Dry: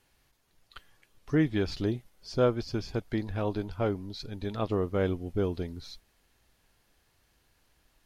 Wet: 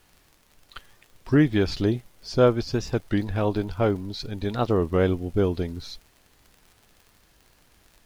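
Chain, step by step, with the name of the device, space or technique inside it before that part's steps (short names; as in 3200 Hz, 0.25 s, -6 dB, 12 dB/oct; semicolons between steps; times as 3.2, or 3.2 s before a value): warped LP (record warp 33 1/3 rpm, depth 160 cents; crackle 67/s -47 dBFS; pink noise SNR 38 dB); gain +6.5 dB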